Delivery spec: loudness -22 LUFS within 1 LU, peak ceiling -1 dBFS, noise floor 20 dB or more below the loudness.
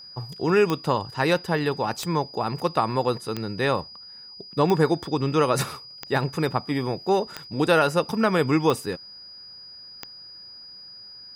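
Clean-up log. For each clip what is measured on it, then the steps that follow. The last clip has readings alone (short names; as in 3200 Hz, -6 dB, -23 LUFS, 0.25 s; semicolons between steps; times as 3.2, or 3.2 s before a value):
clicks 8; steady tone 4900 Hz; tone level -41 dBFS; loudness -24.0 LUFS; peak -6.5 dBFS; loudness target -22.0 LUFS
-> de-click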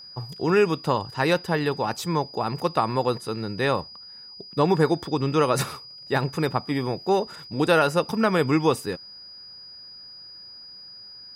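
clicks 0; steady tone 4900 Hz; tone level -41 dBFS
-> notch 4900 Hz, Q 30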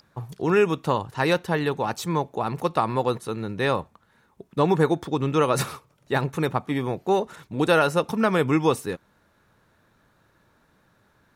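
steady tone none; loudness -24.5 LUFS; peak -6.5 dBFS; loudness target -22.0 LUFS
-> gain +2.5 dB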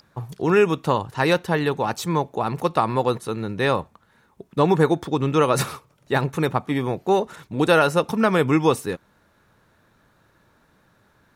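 loudness -22.0 LUFS; peak -4.0 dBFS; noise floor -61 dBFS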